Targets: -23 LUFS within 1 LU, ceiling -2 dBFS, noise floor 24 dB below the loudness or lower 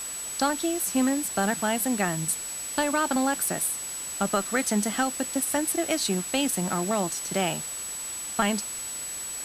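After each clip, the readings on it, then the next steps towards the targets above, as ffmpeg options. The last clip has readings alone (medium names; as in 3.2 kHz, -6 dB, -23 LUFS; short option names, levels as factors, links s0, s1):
steady tone 7.9 kHz; tone level -33 dBFS; noise floor -35 dBFS; noise floor target -51 dBFS; loudness -26.5 LUFS; peak level -10.0 dBFS; loudness target -23.0 LUFS
-> -af "bandreject=f=7900:w=30"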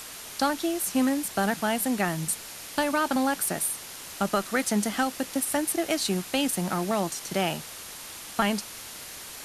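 steady tone not found; noise floor -42 dBFS; noise floor target -52 dBFS
-> -af "afftdn=nr=10:nf=-42"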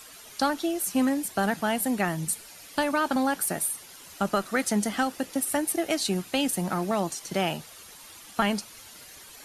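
noise floor -48 dBFS; noise floor target -52 dBFS
-> -af "afftdn=nr=6:nf=-48"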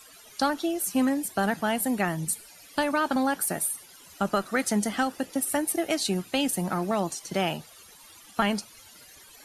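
noise floor -51 dBFS; noise floor target -52 dBFS
-> -af "afftdn=nr=6:nf=-51"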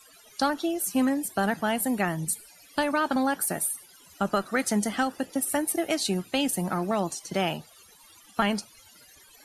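noise floor -55 dBFS; loudness -27.5 LUFS; peak level -10.5 dBFS; loudness target -23.0 LUFS
-> -af "volume=1.68"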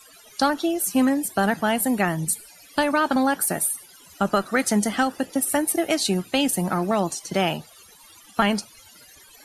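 loudness -23.0 LUFS; peak level -6.0 dBFS; noise floor -50 dBFS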